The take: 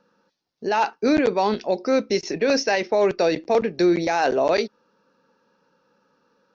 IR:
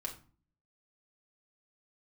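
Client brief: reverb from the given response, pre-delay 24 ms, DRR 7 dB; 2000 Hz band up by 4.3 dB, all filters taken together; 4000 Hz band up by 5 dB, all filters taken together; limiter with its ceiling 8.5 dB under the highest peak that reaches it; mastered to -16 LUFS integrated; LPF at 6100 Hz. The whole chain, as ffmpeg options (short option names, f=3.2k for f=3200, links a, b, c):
-filter_complex "[0:a]lowpass=6.1k,equalizer=f=2k:t=o:g=4,equalizer=f=4k:t=o:g=6.5,alimiter=limit=-15dB:level=0:latency=1,asplit=2[a][b];[1:a]atrim=start_sample=2205,adelay=24[c];[b][c]afir=irnorm=-1:irlink=0,volume=-6.5dB[d];[a][d]amix=inputs=2:normalize=0,volume=8.5dB"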